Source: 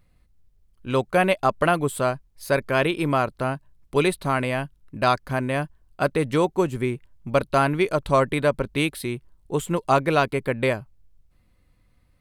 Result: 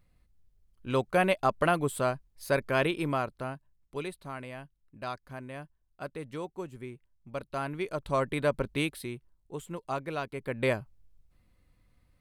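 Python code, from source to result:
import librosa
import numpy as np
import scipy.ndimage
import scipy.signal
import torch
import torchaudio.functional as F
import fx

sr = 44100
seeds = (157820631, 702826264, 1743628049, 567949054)

y = fx.gain(x, sr, db=fx.line((2.85, -5.5), (4.14, -17.0), (7.28, -17.0), (8.64, -5.0), (9.57, -14.5), (10.3, -14.5), (10.72, -4.0)))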